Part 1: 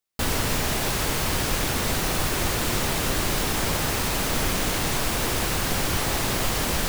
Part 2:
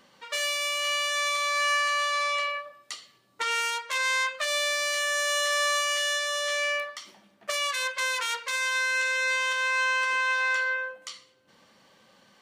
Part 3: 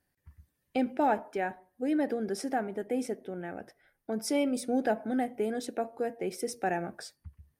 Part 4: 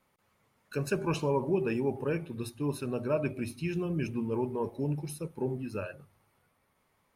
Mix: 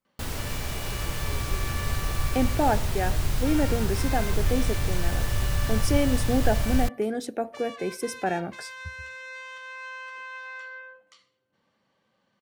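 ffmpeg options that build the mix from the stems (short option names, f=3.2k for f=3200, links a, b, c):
-filter_complex "[0:a]asubboost=boost=6.5:cutoff=110,volume=-10dB[a];[1:a]highshelf=f=4.4k:g=-11,acontrast=78,adelay=50,volume=-19dB[b];[2:a]adelay=1600,volume=3dB[c];[3:a]volume=-16dB[d];[a][b][c][d]amix=inputs=4:normalize=0,equalizer=f=99:t=o:w=1.7:g=4.5"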